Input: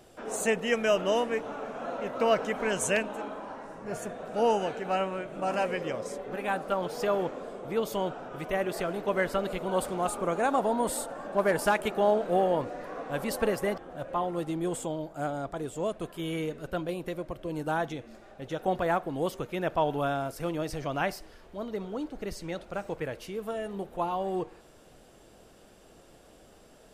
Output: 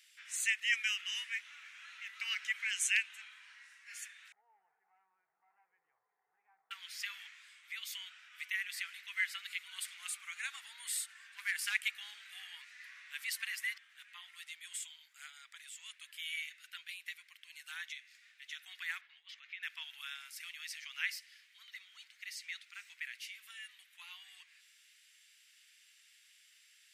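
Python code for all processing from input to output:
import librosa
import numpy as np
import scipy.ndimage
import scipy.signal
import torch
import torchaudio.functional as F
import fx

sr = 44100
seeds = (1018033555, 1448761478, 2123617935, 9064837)

y = fx.chain(x, sr, fx.cheby1_bandpass(low_hz=110.0, high_hz=830.0, order=4),
    fx.env_flatten(amount_pct=50), at=(4.32, 6.71))
y = fx.chain(y, sr, fx.air_absorb(metres=230.0),
    fx.over_compress(threshold_db=-36.0, ratio=-1.0), at=(19.01, 19.63))
y = scipy.signal.sosfilt(scipy.signal.ellip(4, 1.0, 70, 2000.0, 'highpass', fs=sr, output='sos'), y)
y = fx.high_shelf(y, sr, hz=2600.0, db=-10.5)
y = y * librosa.db_to_amplitude(8.0)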